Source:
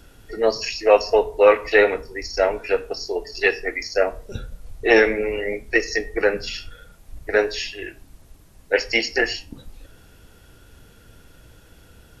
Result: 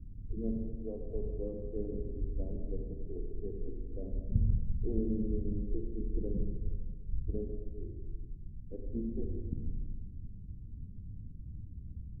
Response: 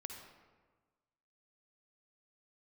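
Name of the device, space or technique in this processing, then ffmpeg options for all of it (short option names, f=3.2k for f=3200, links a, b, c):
club heard from the street: -filter_complex "[0:a]alimiter=limit=-7dB:level=0:latency=1:release=497,lowpass=f=210:w=0.5412,lowpass=f=210:w=1.3066[a];[1:a]atrim=start_sample=2205[b];[a][b]afir=irnorm=-1:irlink=0,volume=8.5dB"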